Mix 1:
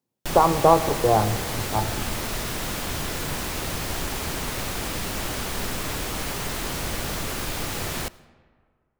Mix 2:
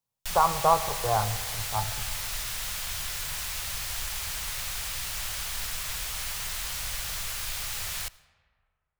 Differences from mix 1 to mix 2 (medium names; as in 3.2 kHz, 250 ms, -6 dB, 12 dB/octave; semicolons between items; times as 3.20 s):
speech +7.0 dB; master: add amplifier tone stack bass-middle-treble 10-0-10